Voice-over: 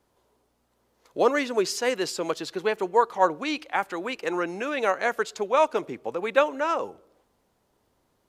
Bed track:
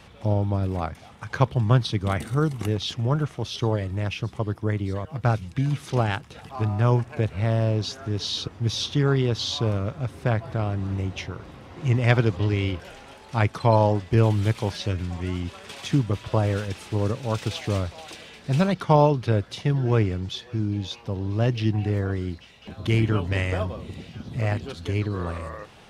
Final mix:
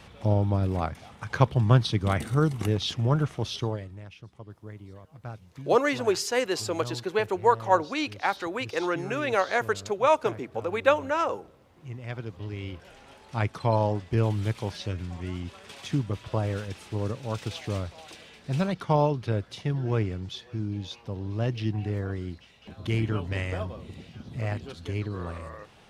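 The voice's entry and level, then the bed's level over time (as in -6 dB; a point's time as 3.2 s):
4.50 s, -0.5 dB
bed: 3.5 s -0.5 dB
4.06 s -17.5 dB
12.08 s -17.5 dB
13.13 s -5.5 dB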